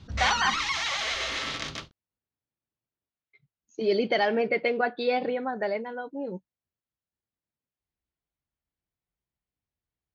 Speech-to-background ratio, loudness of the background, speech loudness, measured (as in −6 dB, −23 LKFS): 1.0 dB, −28.5 LKFS, −27.5 LKFS